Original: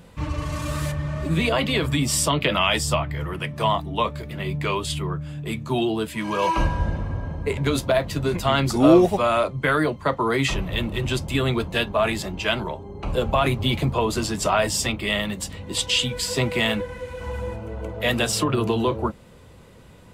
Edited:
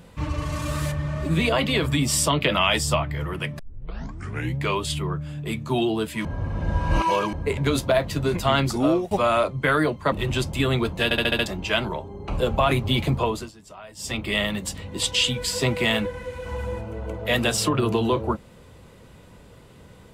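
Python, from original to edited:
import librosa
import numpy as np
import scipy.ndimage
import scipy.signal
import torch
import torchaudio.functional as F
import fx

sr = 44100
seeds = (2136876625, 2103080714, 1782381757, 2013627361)

y = fx.edit(x, sr, fx.tape_start(start_s=3.59, length_s=1.05),
    fx.reverse_span(start_s=6.25, length_s=1.08),
    fx.fade_out_to(start_s=8.59, length_s=0.52, floor_db=-19.5),
    fx.cut(start_s=10.12, length_s=0.75),
    fx.stutter_over(start_s=11.79, slice_s=0.07, count=6),
    fx.fade_down_up(start_s=13.96, length_s=1.04, db=-22.0, fade_s=0.3), tone=tone)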